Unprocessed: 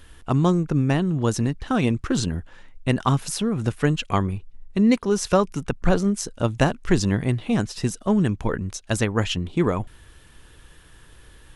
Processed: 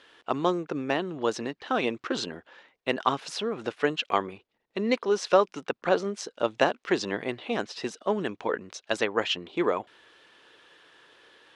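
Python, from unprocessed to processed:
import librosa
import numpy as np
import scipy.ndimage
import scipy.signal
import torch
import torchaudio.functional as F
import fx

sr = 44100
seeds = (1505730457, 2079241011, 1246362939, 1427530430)

y = scipy.signal.sosfilt(scipy.signal.cheby1(2, 1.0, [440.0, 4100.0], 'bandpass', fs=sr, output='sos'), x)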